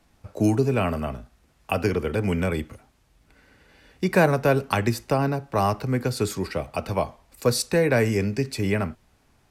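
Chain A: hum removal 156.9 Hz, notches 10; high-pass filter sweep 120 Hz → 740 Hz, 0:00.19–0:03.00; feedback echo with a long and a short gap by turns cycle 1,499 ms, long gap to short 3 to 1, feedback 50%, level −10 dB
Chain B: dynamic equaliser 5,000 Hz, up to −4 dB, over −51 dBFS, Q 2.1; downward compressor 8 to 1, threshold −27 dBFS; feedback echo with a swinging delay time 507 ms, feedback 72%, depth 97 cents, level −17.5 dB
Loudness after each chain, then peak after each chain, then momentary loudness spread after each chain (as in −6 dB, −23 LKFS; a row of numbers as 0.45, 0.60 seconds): −24.0, −33.0 LKFS; −5.0, −11.5 dBFS; 12, 16 LU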